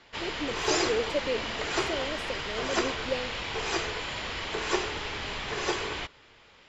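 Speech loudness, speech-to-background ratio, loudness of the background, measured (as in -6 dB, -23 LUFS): -35.0 LUFS, -4.0 dB, -31.0 LUFS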